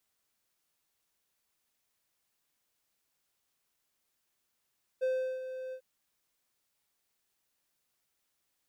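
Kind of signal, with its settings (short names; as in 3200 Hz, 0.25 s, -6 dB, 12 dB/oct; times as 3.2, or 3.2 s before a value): ADSR triangle 517 Hz, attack 23 ms, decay 0.366 s, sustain -11 dB, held 0.72 s, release 77 ms -24.5 dBFS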